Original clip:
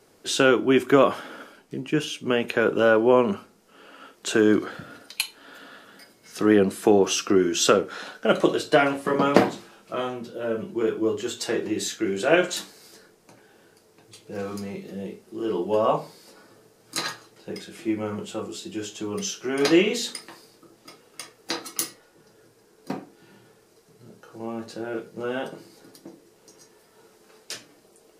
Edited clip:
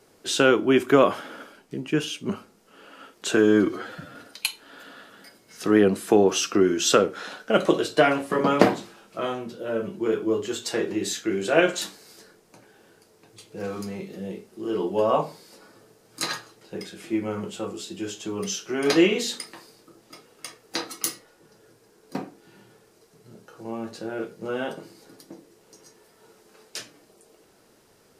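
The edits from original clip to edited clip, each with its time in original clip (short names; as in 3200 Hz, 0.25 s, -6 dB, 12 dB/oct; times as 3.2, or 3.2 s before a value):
2.29–3.3 cut
4.38–4.9 stretch 1.5×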